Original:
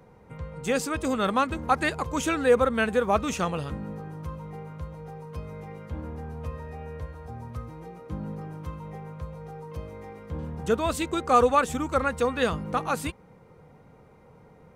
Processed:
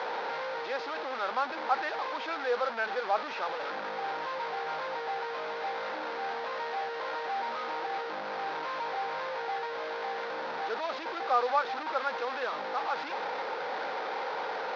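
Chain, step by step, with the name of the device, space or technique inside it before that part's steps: digital answering machine (band-pass 330–3200 Hz; one-bit delta coder 32 kbps, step -21 dBFS; cabinet simulation 460–4400 Hz, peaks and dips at 570 Hz +3 dB, 840 Hz +8 dB, 1.5 kHz +5 dB, 2.9 kHz -5 dB); trim -9 dB

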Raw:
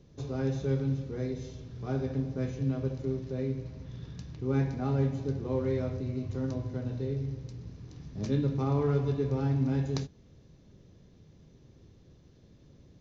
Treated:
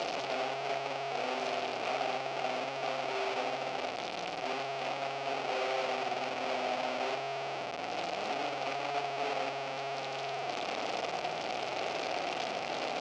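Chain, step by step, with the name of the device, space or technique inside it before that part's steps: spring tank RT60 1 s, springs 51 ms, chirp 30 ms, DRR -3 dB; home computer beeper (one-bit comparator; cabinet simulation 620–5000 Hz, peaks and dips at 720 Hz +10 dB, 1 kHz -7 dB, 1.7 kHz -8 dB, 2.5 kHz +4 dB, 3.8 kHz -4 dB); trim -3 dB

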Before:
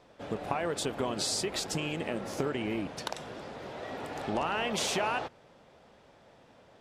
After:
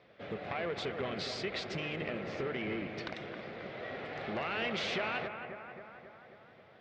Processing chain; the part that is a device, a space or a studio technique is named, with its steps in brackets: analogue delay pedal into a guitar amplifier (bucket-brigade echo 268 ms, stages 4096, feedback 61%, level -9.5 dB; valve stage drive 27 dB, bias 0.45; cabinet simulation 83–4300 Hz, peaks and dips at 280 Hz -6 dB, 910 Hz -9 dB, 2.1 kHz +7 dB)

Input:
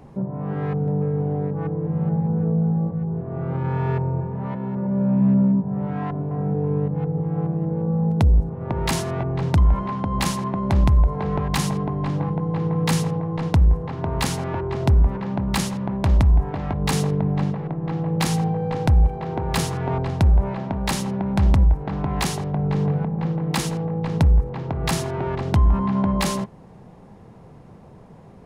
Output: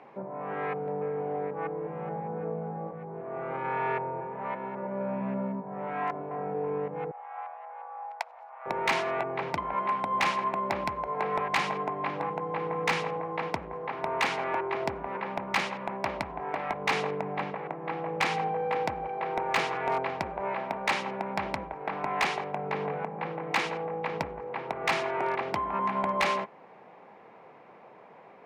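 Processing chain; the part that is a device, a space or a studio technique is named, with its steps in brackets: megaphone (band-pass 570–2500 Hz; peaking EQ 2.3 kHz +7.5 dB 0.46 oct; hard clipper -21 dBFS, distortion -14 dB); 7.11–8.66 s: steep high-pass 680 Hz 48 dB/octave; trim +2 dB

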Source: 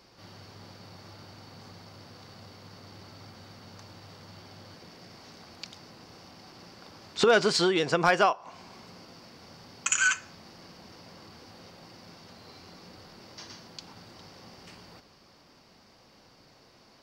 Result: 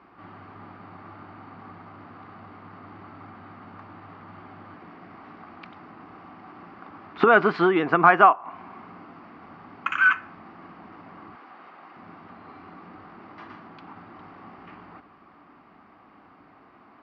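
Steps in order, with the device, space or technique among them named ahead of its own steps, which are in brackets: bass cabinet (cabinet simulation 62–2300 Hz, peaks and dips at 79 Hz -7 dB, 130 Hz -9 dB, 290 Hz +6 dB, 520 Hz -9 dB, 760 Hz +4 dB, 1.2 kHz +9 dB); 11.35–11.97 s: frequency weighting A; trim +4.5 dB

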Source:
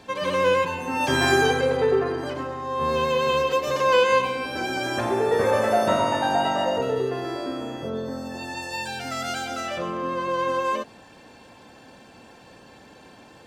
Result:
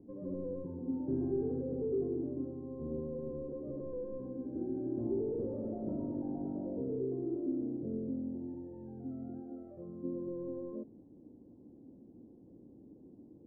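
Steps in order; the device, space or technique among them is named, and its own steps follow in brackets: 9.39–10.03 s: peaking EQ 81 Hz -> 440 Hz -12.5 dB 1.5 oct; overdriven synthesiser ladder filter (saturation -21 dBFS, distortion -11 dB; four-pole ladder low-pass 370 Hz, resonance 50%); trim +1.5 dB

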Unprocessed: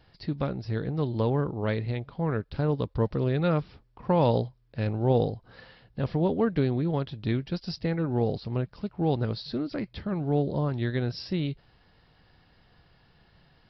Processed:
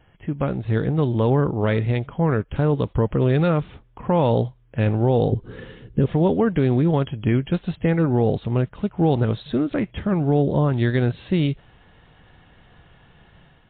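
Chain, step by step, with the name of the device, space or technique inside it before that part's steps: 5.32–6.06 s: resonant low shelf 520 Hz +8 dB, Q 3; low-bitrate web radio (level rider gain up to 5.5 dB; peak limiter -12.5 dBFS, peak gain reduction 8.5 dB; trim +4 dB; MP3 32 kbps 8 kHz)

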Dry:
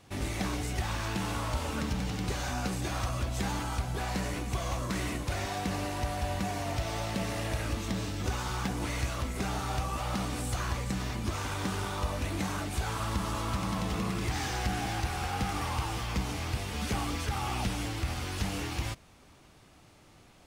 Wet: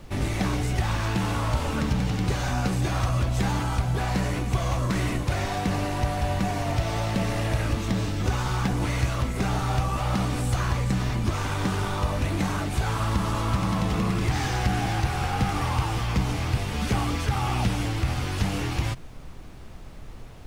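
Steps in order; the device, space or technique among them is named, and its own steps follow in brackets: car interior (peaking EQ 130 Hz +6 dB 0.58 oct; treble shelf 4 kHz -5 dB; brown noise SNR 15 dB); trim +6 dB

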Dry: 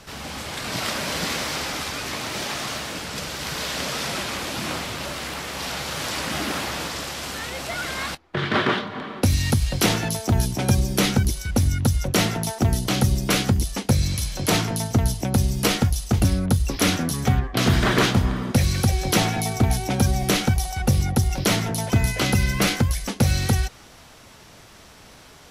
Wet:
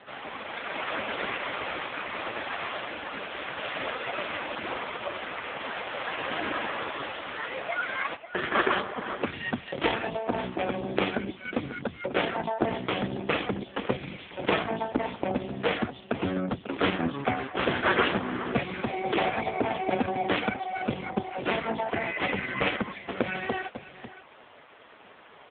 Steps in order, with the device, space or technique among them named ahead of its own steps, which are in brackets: 17.08–18.63 s: high-pass 66 Hz 24 dB/octave; satellite phone (band-pass 330–3000 Hz; delay 544 ms -14.5 dB; trim +4 dB; AMR-NB 4.75 kbps 8 kHz)

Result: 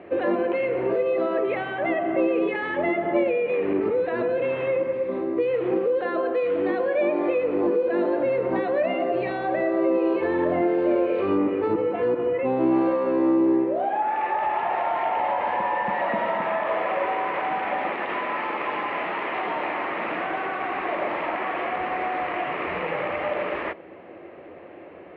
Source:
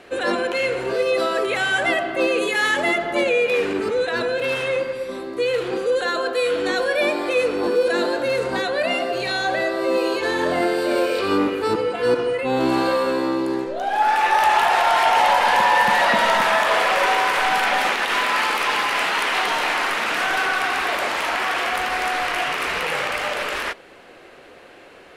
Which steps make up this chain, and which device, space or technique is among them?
bass amplifier (compression 4:1, threshold -23 dBFS, peak gain reduction 9 dB; cabinet simulation 78–2200 Hz, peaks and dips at 86 Hz +8 dB, 180 Hz +6 dB, 330 Hz +8 dB, 600 Hz +5 dB, 1.5 kHz -9 dB)

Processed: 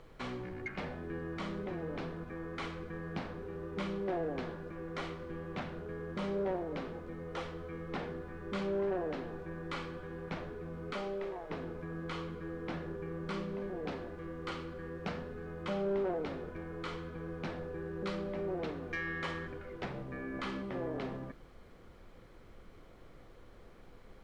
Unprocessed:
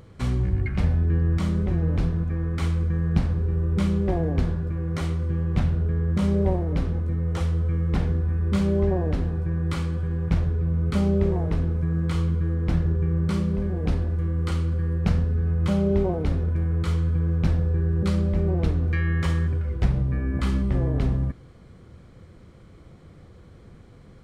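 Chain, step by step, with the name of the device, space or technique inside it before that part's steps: 10.92–11.49 s: high-pass 400 Hz -> 1.3 kHz 6 dB/octave; aircraft cabin announcement (band-pass 370–3900 Hz; saturation -24.5 dBFS, distortion -18 dB; brown noise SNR 15 dB); trim -3 dB

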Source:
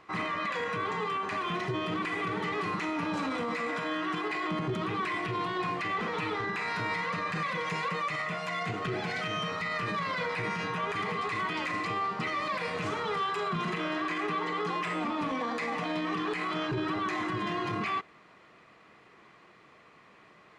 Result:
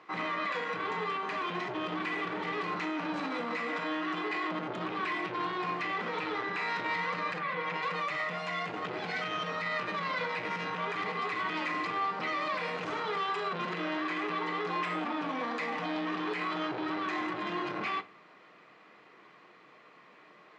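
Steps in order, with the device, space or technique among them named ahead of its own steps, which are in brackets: public-address speaker with an overloaded transformer (transformer saturation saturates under 990 Hz; band-pass 220–5600 Hz); 7.38–7.81 s: low-pass 2.6 kHz -> 4.1 kHz 12 dB/octave; simulated room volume 150 m³, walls furnished, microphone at 0.49 m

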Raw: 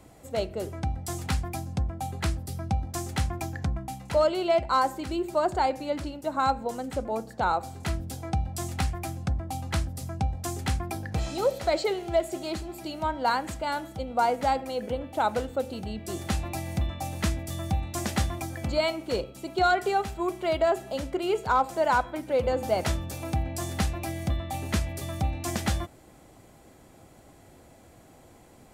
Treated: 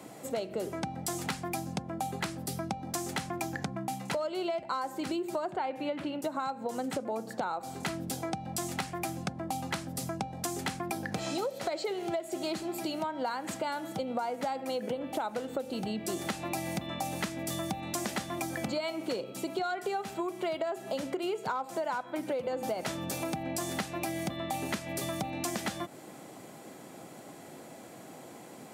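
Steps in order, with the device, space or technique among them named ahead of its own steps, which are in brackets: high-pass 150 Hz 24 dB/octave; serial compression, peaks first (compression, threshold -32 dBFS, peak gain reduction 13 dB; compression 2:1, threshold -40 dBFS, peak gain reduction 6.5 dB); 5.48–6.22 s: resonant high shelf 4 kHz -9.5 dB, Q 1.5; trim +6.5 dB

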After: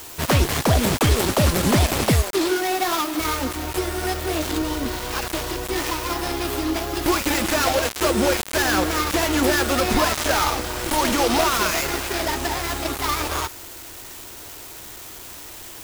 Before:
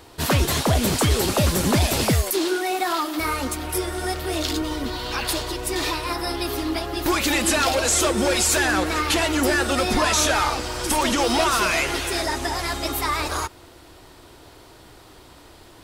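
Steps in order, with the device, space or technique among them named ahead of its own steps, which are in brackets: budget class-D amplifier (dead-time distortion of 0.15 ms; zero-crossing glitches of -24 dBFS); trim +2 dB

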